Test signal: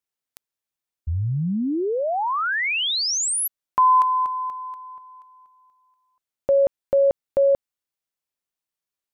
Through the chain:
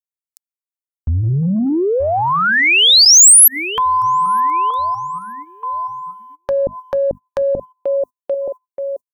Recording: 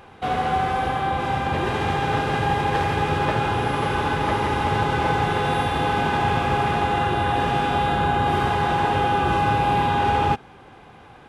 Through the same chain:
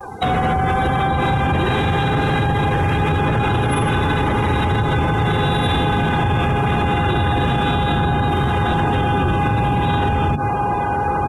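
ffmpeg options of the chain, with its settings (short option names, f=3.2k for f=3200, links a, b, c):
-filter_complex "[0:a]asplit=2[a][b];[b]adelay=926,lowpass=f=1.8k:p=1,volume=-16dB,asplit=2[c][d];[d]adelay=926,lowpass=f=1.8k:p=1,volume=0.51,asplit=2[e][f];[f]adelay=926,lowpass=f=1.8k:p=1,volume=0.51,asplit=2[g][h];[h]adelay=926,lowpass=f=1.8k:p=1,volume=0.51,asplit=2[i][j];[j]adelay=926,lowpass=f=1.8k:p=1,volume=0.51[k];[a][c][e][g][i][k]amix=inputs=6:normalize=0,acrossover=split=290[l][m];[m]acompressor=threshold=-29dB:ratio=10:attack=1.3:release=192:knee=2.83:detection=peak[n];[l][n]amix=inputs=2:normalize=0,asoftclip=type=tanh:threshold=-16.5dB,bandreject=f=50:t=h:w=6,bandreject=f=100:t=h:w=6,bandreject=f=150:t=h:w=6,bandreject=f=200:t=h:w=6,bandreject=f=250:t=h:w=6,asoftclip=type=hard:threshold=-19.5dB,afftdn=nr=33:nf=-43,aexciter=amount=9.5:drive=6.2:freq=4.6k,acompressor=threshold=-30dB:ratio=4:attack=3.9:release=128:knee=1:detection=peak,bandreject=f=4.9k:w=19,apsyclip=29.5dB,agate=range=-25dB:threshold=-21dB:ratio=3:release=58:detection=rms,highshelf=f=2.3k:g=10.5,volume=-13dB"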